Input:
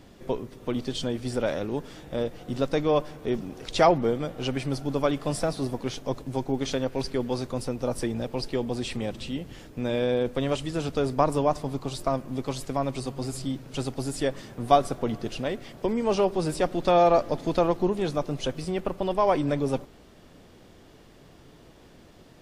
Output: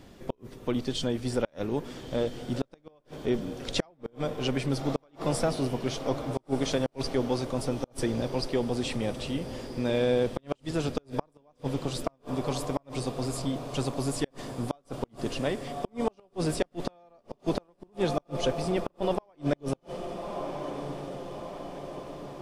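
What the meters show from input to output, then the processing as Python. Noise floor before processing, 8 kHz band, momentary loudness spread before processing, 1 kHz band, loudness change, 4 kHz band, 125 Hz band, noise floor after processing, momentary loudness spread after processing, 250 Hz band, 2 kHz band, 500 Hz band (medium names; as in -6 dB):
-52 dBFS, -0.5 dB, 10 LU, -9.0 dB, -4.5 dB, -1.0 dB, -1.5 dB, -65 dBFS, 10 LU, -2.0 dB, -2.5 dB, -4.5 dB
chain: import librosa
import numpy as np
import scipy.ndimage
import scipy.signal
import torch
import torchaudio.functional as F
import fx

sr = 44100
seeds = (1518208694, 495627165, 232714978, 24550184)

y = fx.echo_diffused(x, sr, ms=1291, feedback_pct=62, wet_db=-12.5)
y = fx.gate_flip(y, sr, shuts_db=-14.0, range_db=-38)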